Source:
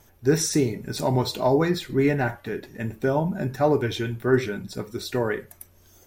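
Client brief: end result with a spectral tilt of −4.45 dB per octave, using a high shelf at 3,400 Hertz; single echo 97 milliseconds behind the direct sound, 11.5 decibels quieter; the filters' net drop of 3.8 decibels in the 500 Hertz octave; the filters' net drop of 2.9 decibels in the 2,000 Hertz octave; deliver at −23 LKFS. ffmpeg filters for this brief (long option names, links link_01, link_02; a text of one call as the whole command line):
ffmpeg -i in.wav -af "equalizer=frequency=500:width_type=o:gain=-5,equalizer=frequency=2000:width_type=o:gain=-5.5,highshelf=frequency=3400:gain=6.5,aecho=1:1:97:0.266,volume=2.5dB" out.wav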